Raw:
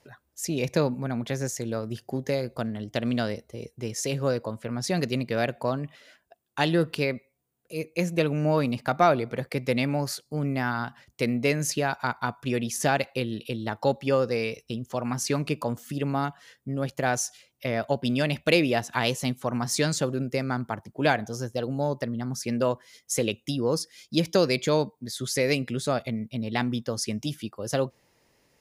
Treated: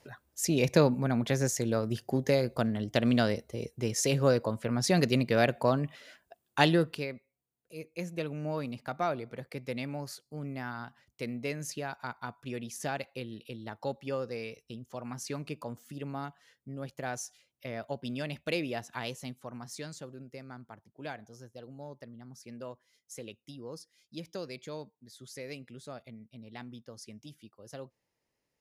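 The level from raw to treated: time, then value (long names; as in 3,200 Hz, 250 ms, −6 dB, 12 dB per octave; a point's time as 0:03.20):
0:06.64 +1 dB
0:07.09 −11 dB
0:18.90 −11 dB
0:20.00 −18 dB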